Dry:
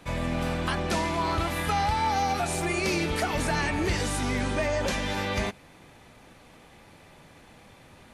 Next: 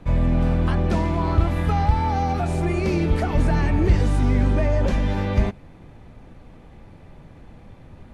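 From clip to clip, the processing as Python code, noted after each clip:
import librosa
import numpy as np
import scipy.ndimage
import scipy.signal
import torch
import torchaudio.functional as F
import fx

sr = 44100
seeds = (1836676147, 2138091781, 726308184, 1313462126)

y = fx.tilt_eq(x, sr, slope=-3.5)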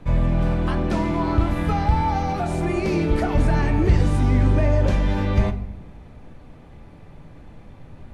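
y = fx.room_shoebox(x, sr, seeds[0], volume_m3=200.0, walls='mixed', distance_m=0.35)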